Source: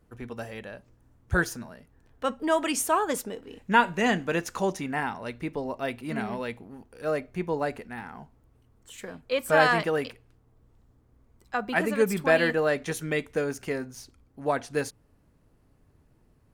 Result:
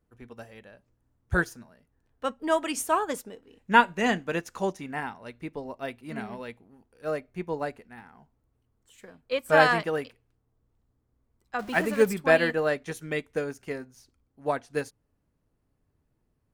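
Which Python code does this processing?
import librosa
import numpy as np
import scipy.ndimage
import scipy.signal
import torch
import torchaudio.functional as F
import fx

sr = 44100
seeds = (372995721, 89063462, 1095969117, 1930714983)

y = fx.zero_step(x, sr, step_db=-34.0, at=(11.59, 12.13))
y = fx.upward_expand(y, sr, threshold_db=-43.0, expansion=1.5)
y = y * 10.0 ** (2.5 / 20.0)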